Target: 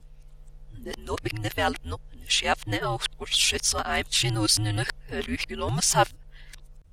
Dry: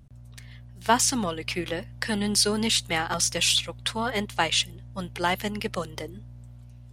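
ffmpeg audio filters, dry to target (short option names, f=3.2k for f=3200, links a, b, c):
-af "areverse,afreqshift=-97"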